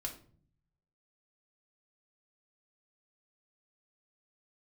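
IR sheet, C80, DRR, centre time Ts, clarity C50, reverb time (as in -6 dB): 15.0 dB, 0.0 dB, 14 ms, 10.5 dB, 0.50 s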